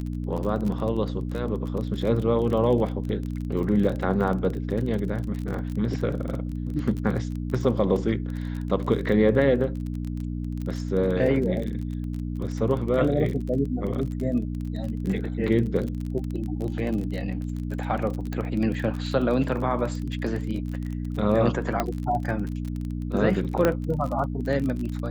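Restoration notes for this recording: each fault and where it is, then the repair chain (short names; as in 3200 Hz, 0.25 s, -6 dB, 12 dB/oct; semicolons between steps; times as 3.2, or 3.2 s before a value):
crackle 29/s -30 dBFS
hum 60 Hz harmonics 5 -30 dBFS
18.33 pop -18 dBFS
21.8 pop -10 dBFS
23.65 pop -8 dBFS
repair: de-click; de-hum 60 Hz, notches 5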